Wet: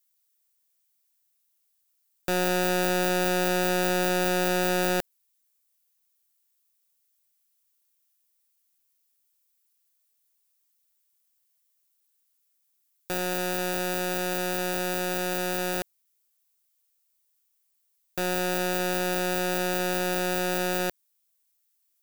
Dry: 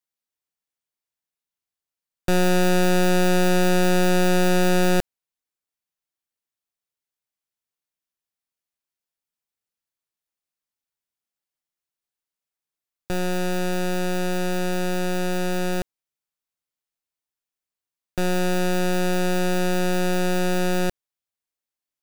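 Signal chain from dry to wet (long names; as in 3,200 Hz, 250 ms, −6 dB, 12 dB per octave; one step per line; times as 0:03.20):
RIAA equalisation recording
soft clipping −15.5 dBFS, distortion −1 dB
level +2 dB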